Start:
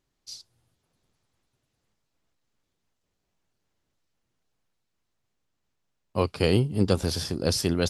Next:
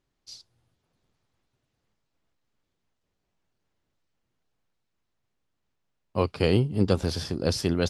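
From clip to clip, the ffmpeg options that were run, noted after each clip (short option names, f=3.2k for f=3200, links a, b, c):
-af "highshelf=f=7.5k:g=-11.5"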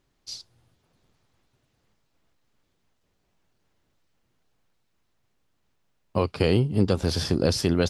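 -af "alimiter=limit=-16dB:level=0:latency=1:release=413,volume=7dB"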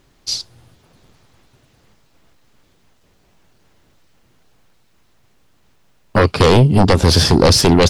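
-af "aeval=exprs='0.376*sin(PI/2*2.51*val(0)/0.376)':c=same,volume=4dB"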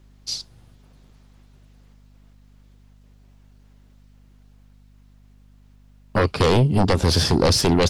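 -af "aeval=exprs='val(0)+0.00631*(sin(2*PI*50*n/s)+sin(2*PI*2*50*n/s)/2+sin(2*PI*3*50*n/s)/3+sin(2*PI*4*50*n/s)/4+sin(2*PI*5*50*n/s)/5)':c=same,volume=-6.5dB"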